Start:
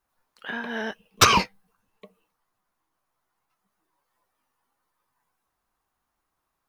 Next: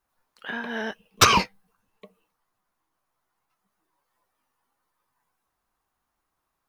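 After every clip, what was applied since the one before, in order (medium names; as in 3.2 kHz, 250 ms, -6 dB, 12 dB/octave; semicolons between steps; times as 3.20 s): no audible change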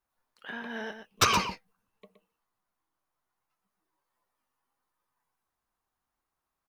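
delay 120 ms -9 dB; trim -7 dB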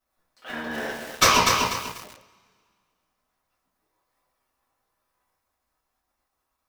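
cycle switcher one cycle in 3, muted; reverberation, pre-delay 3 ms, DRR -8 dB; bit-crushed delay 245 ms, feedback 35%, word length 6-bit, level -4 dB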